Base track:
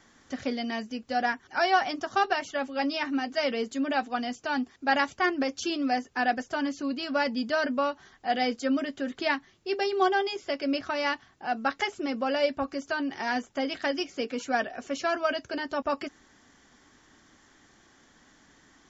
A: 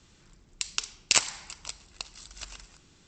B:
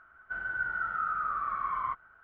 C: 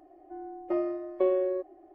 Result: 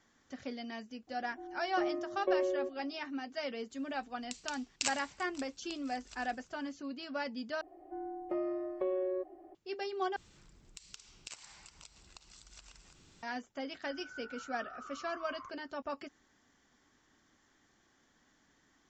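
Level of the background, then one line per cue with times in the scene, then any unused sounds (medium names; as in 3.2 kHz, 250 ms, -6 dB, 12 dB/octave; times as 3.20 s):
base track -11 dB
1.07 s: add C -5.5 dB
3.70 s: add A -12.5 dB
7.61 s: replace with C -0.5 dB + compression 2.5:1, threshold -33 dBFS
10.16 s: replace with A -2 dB + compression 2.5:1, threshold -54 dBFS
13.56 s: add B -17 dB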